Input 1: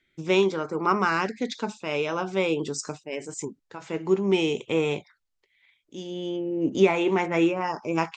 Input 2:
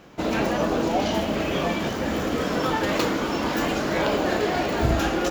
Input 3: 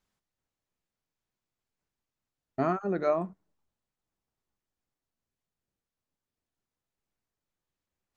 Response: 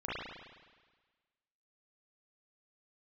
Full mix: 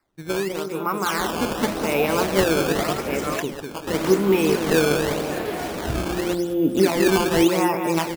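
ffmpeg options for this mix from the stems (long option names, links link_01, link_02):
-filter_complex "[0:a]bandreject=frequency=3100:width=8.4,alimiter=limit=-13.5dB:level=0:latency=1:release=283,volume=-1.5dB,asplit=2[link_01][link_02];[link_02]volume=-6dB[link_03];[1:a]adelay=1050,volume=-11.5dB,asplit=3[link_04][link_05][link_06];[link_04]atrim=end=3.37,asetpts=PTS-STARTPTS,afade=type=out:start_time=3.366:duration=0.004:curve=hsin[link_07];[link_05]atrim=start=3.37:end=3.87,asetpts=PTS-STARTPTS,volume=0[link_08];[link_06]atrim=start=3.87,asetpts=PTS-STARTPTS,afade=type=in:duration=0.004:curve=hsin[link_09];[link_07][link_08][link_09]concat=n=3:v=0:a=1,asplit=2[link_10][link_11];[link_11]volume=-15dB[link_12];[2:a]highpass=750,aecho=1:1:5.8:0.65,adelay=200,volume=-4.5dB[link_13];[link_03][link_12]amix=inputs=2:normalize=0,aecho=0:1:200|400|600|800|1000|1200|1400:1|0.51|0.26|0.133|0.0677|0.0345|0.0176[link_14];[link_01][link_10][link_13][link_14]amix=inputs=4:normalize=0,dynaudnorm=framelen=200:gausssize=13:maxgain=7dB,acrusher=samples=13:mix=1:aa=0.000001:lfo=1:lforange=20.8:lforate=0.87"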